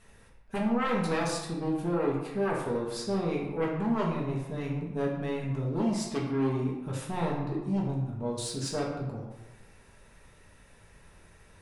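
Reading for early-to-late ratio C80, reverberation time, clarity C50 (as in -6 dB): 5.5 dB, 1.1 s, 3.0 dB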